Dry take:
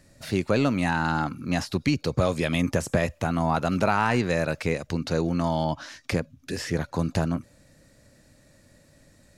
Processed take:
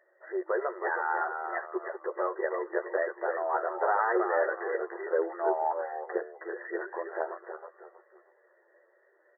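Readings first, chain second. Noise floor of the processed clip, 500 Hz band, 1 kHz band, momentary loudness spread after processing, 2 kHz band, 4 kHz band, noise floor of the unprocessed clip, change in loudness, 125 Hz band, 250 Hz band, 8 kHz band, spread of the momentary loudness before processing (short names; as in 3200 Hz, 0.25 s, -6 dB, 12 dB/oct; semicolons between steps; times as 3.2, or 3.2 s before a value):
-66 dBFS, -1.5 dB, -1.5 dB, 10 LU, -3.5 dB, under -40 dB, -59 dBFS, -5.5 dB, under -40 dB, -14.5 dB, under -40 dB, 7 LU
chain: frequency-shifting echo 0.317 s, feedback 34%, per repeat -95 Hz, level -5.5 dB; chorus voices 6, 0.38 Hz, delay 12 ms, depth 1.9 ms; FFT band-pass 330–2000 Hz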